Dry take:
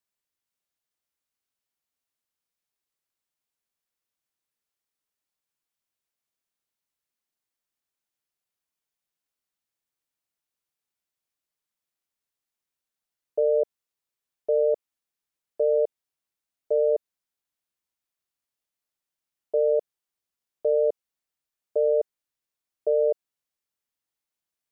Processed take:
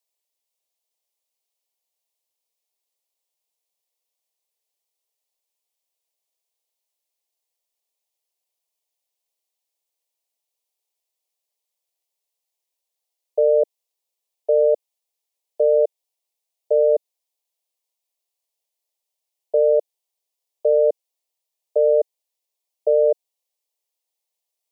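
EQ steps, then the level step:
high-pass filter 350 Hz 24 dB per octave
phaser with its sweep stopped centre 600 Hz, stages 4
+6.5 dB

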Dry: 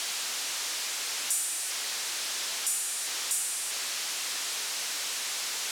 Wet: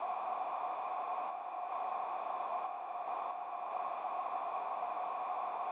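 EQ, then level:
formant resonators in series a
high-pass filter 100 Hz
low-shelf EQ 490 Hz +9 dB
+15.5 dB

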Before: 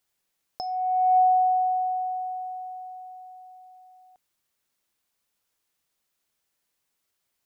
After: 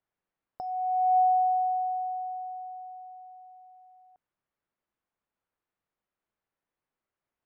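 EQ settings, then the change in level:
low-pass filter 1,600 Hz 12 dB per octave
−3.0 dB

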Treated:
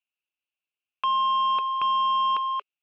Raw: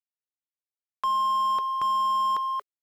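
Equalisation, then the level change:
low-pass with resonance 2,700 Hz, resonance Q 10
low-shelf EQ 170 Hz −6 dB
parametric band 1,900 Hz −10.5 dB 0.21 octaves
0.0 dB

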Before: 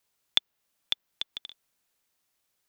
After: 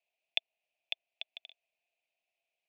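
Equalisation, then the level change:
pair of resonant band-passes 1,300 Hz, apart 1.9 octaves
+4.0 dB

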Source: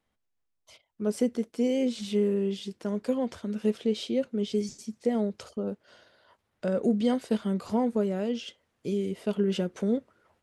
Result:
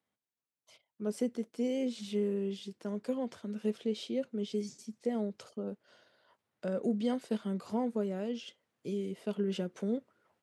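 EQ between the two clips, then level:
high-pass filter 110 Hz 24 dB per octave
−6.5 dB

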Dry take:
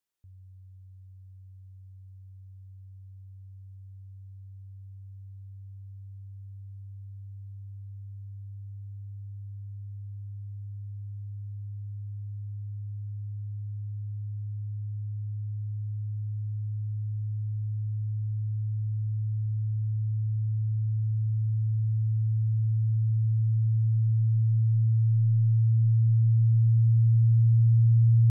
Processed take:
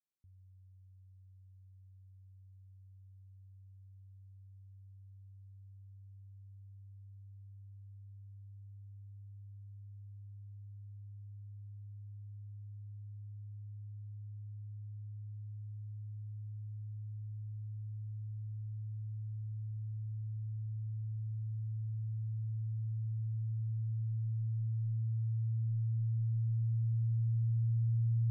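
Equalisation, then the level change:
resonant band-pass 120 Hz, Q 1.2
parametric band 110 Hz −13 dB
+1.0 dB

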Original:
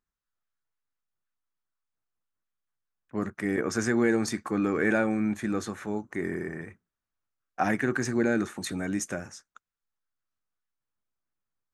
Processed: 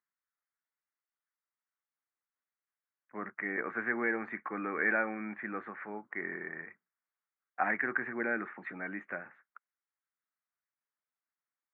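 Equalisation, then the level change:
high-pass filter 150 Hz 24 dB per octave
elliptic low-pass filter 2,100 Hz, stop band 60 dB
tilt shelving filter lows −9.5 dB, about 750 Hz
−5.0 dB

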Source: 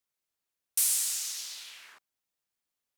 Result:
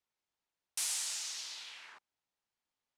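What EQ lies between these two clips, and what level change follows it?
high-frequency loss of the air 74 metres
parametric band 880 Hz +5 dB 0.4 octaves
0.0 dB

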